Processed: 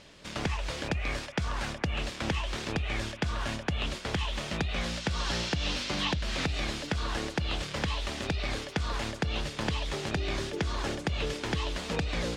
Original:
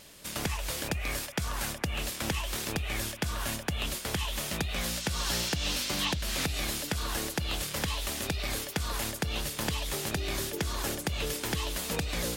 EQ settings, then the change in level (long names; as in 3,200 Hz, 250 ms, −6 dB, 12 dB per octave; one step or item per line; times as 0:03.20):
high-frequency loss of the air 120 metres
+2.0 dB